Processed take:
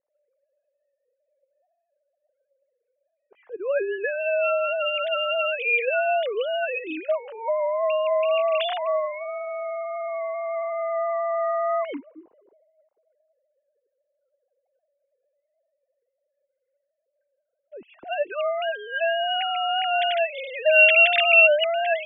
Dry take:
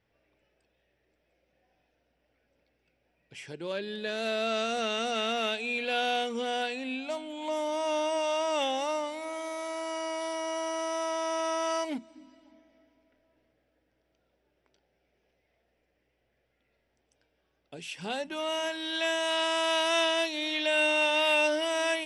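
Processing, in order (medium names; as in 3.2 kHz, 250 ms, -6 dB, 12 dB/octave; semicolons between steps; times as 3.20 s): formants replaced by sine waves; level-controlled noise filter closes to 560 Hz, open at -26.5 dBFS; trim +7 dB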